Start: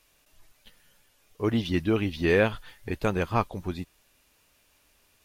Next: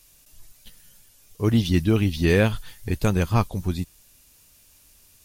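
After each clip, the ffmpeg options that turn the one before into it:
ffmpeg -i in.wav -af "bass=frequency=250:gain=10,treble=frequency=4000:gain=13" out.wav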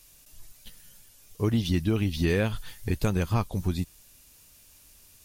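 ffmpeg -i in.wav -af "acompressor=threshold=-22dB:ratio=3" out.wav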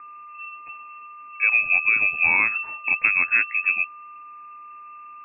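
ffmpeg -i in.wav -af "aeval=exprs='val(0)+0.00631*sin(2*PI*1500*n/s)':channel_layout=same,lowpass=frequency=2300:width_type=q:width=0.5098,lowpass=frequency=2300:width_type=q:width=0.6013,lowpass=frequency=2300:width_type=q:width=0.9,lowpass=frequency=2300:width_type=q:width=2.563,afreqshift=-2700,volume=5dB" out.wav

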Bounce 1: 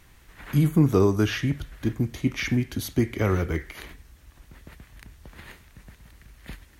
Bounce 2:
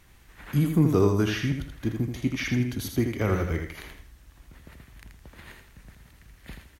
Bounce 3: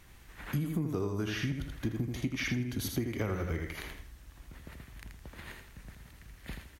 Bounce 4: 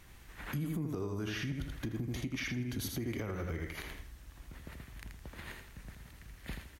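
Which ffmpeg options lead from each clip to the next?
ffmpeg -i in.wav -af "aecho=1:1:81|162|243|324:0.501|0.15|0.0451|0.0135,volume=-2.5dB" out.wav
ffmpeg -i in.wav -af "acompressor=threshold=-29dB:ratio=10" out.wav
ffmpeg -i in.wav -af "alimiter=level_in=4dB:limit=-24dB:level=0:latency=1:release=118,volume=-4dB" out.wav

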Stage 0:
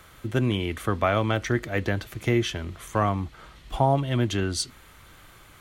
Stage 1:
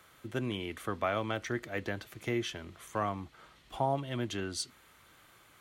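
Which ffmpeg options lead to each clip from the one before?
ffmpeg -i in.wav -af "highpass=frequency=200:poles=1,volume=-8dB" out.wav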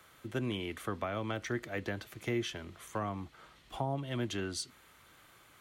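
ffmpeg -i in.wav -filter_complex "[0:a]acrossover=split=350[link_01][link_02];[link_02]acompressor=threshold=-34dB:ratio=6[link_03];[link_01][link_03]amix=inputs=2:normalize=0" out.wav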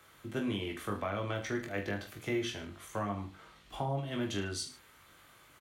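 ffmpeg -i in.wav -af "aecho=1:1:20|44|72.8|107.4|148.8:0.631|0.398|0.251|0.158|0.1,volume=-1.5dB" out.wav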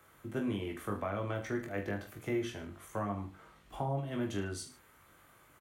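ffmpeg -i in.wav -af "equalizer=frequency=4000:width=0.77:gain=-9" out.wav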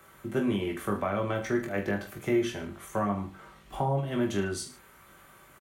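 ffmpeg -i in.wav -af "aecho=1:1:5.2:0.36,volume=6.5dB" out.wav

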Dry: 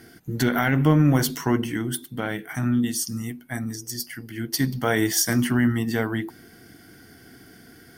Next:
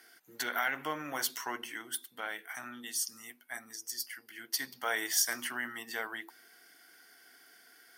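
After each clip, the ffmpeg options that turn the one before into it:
ffmpeg -i in.wav -af "highpass=830,volume=-6dB" out.wav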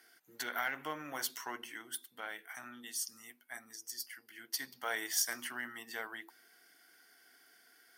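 ffmpeg -i in.wav -af "aeval=exprs='0.168*(cos(1*acos(clip(val(0)/0.168,-1,1)))-cos(1*PI/2))+0.00668*(cos(3*acos(clip(val(0)/0.168,-1,1)))-cos(3*PI/2))+0.00168*(cos(7*acos(clip(val(0)/0.168,-1,1)))-cos(7*PI/2))':channel_layout=same,volume=-3dB" out.wav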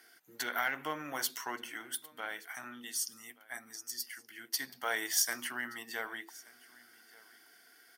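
ffmpeg -i in.wav -af "aecho=1:1:1176:0.0708,volume=3dB" out.wav

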